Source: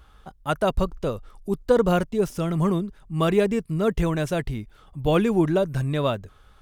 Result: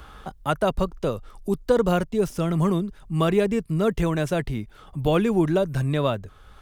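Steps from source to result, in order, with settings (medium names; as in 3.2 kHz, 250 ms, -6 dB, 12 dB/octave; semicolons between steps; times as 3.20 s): three bands compressed up and down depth 40%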